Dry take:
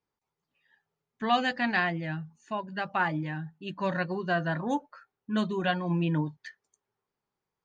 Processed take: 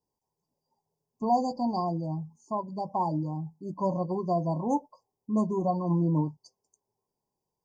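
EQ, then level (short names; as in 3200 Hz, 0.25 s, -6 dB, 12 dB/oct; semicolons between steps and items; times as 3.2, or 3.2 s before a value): brick-wall FIR band-stop 1100–4500 Hz; +2.0 dB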